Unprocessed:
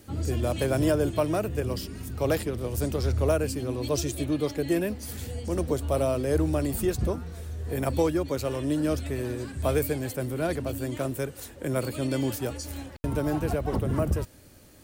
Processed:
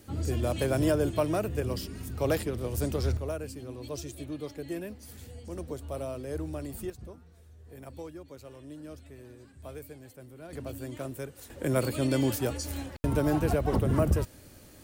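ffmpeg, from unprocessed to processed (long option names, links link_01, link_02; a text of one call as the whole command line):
ffmpeg -i in.wav -af "asetnsamples=nb_out_samples=441:pad=0,asendcmd='3.17 volume volume -10.5dB;6.9 volume volume -18dB;10.53 volume volume -7.5dB;11.5 volume volume 1dB',volume=-2dB" out.wav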